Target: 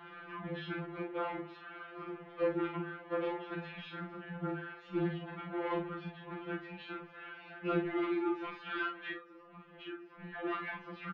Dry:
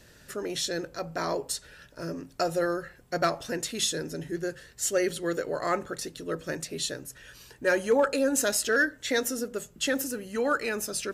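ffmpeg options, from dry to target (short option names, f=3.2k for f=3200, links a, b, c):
-filter_complex "[0:a]aeval=exprs='val(0)+0.5*0.015*sgn(val(0))':c=same,highpass=f=200:w=0.5412,highpass=f=200:w=1.3066,acrossover=split=370 2400:gain=0.2 1 0.178[a][b][c];[a][b][c]amix=inputs=3:normalize=0,bandreject=f=60:t=h:w=6,bandreject=f=120:t=h:w=6,bandreject=f=180:t=h:w=6,bandreject=f=240:t=h:w=6,bandreject=f=300:t=h:w=6,bandreject=f=360:t=h:w=6,bandreject=f=420:t=h:w=6,bandreject=f=480:t=h:w=6,bandreject=f=540:t=h:w=6,asettb=1/sr,asplit=3[d][e][f];[d]atrim=end=9.114[g];[e]atrim=start=9.11:end=10.2,asetpts=PTS-STARTPTS,afade=t=in:d=0.004:c=qsin,afade=t=out:st=1.086:d=0.004:c=qsin,acompressor=threshold=-41dB:ratio=16[h];[f]atrim=start=10.196[i];[g][h]acrossfade=d=0.004:c1=hsin:c2=qsin[j];[j][i]acrossfade=d=0.004:c1=qsin:c2=hsin,aeval=exprs='(tanh(35.5*val(0)+0.4)-tanh(0.4))/35.5':c=same,highpass=f=330:t=q:w=0.5412,highpass=f=330:t=q:w=1.307,lowpass=f=3.4k:t=q:w=0.5176,lowpass=f=3.4k:t=q:w=0.7071,lowpass=f=3.4k:t=q:w=1.932,afreqshift=-200,asplit=2[k][l];[l]aecho=0:1:37|51:0.501|0.447[m];[k][m]amix=inputs=2:normalize=0,afftfilt=real='re*2.83*eq(mod(b,8),0)':imag='im*2.83*eq(mod(b,8),0)':win_size=2048:overlap=0.75"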